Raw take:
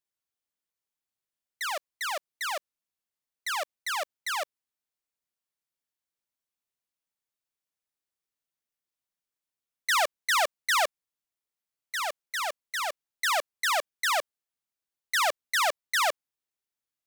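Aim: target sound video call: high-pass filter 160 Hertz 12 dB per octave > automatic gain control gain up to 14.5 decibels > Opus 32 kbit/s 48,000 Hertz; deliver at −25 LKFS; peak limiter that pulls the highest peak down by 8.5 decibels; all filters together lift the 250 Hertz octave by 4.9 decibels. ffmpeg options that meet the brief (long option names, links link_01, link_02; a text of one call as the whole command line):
ffmpeg -i in.wav -af "equalizer=frequency=250:width_type=o:gain=7.5,alimiter=level_in=0.5dB:limit=-24dB:level=0:latency=1,volume=-0.5dB,highpass=160,dynaudnorm=maxgain=14.5dB,volume=4.5dB" -ar 48000 -c:a libopus -b:a 32k out.opus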